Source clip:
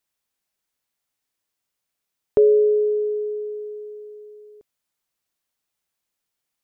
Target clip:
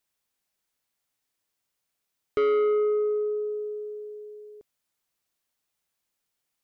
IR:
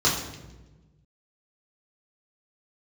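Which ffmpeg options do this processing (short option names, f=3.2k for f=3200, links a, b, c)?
-af "asoftclip=type=tanh:threshold=-20.5dB"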